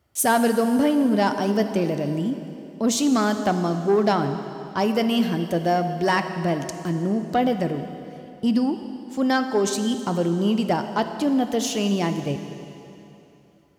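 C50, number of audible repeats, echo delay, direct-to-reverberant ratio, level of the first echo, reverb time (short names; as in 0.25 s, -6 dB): 8.5 dB, none, none, 7.5 dB, none, 3.0 s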